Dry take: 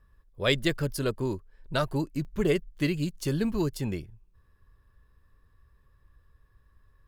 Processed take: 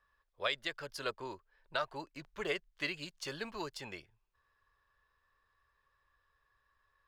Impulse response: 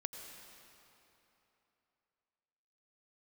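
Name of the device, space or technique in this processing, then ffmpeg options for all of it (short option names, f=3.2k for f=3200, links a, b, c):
DJ mixer with the lows and highs turned down: -filter_complex "[0:a]asettb=1/sr,asplit=3[a][b][c];[a]atrim=end=1.104[d];[b]atrim=start=1.1:end=2.26,asetpts=PTS-STARTPTS,afade=t=in:d=0.004:c=qsin,afade=t=out:st=1.156:d=0.004:c=qsin,highshelf=f=4.8k:g=-4.5[e];[c]atrim=start=2.256[f];[d][e]acrossfade=d=0.004:c1=hsin:c2=qsin[g];[g][f]acrossfade=d=0.004:c1=qsin:c2=hsin,acrossover=split=580 6200:gain=0.0794 1 0.158[h][i][j];[h][i][j]amix=inputs=3:normalize=0,alimiter=limit=-19.5dB:level=0:latency=1:release=380,volume=-1dB"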